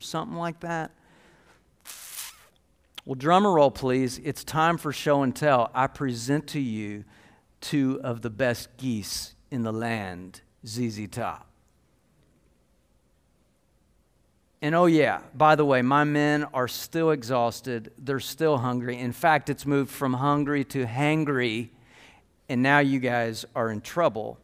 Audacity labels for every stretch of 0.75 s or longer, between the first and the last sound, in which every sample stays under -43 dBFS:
0.870000	1.850000	silence
11.420000	14.620000	silence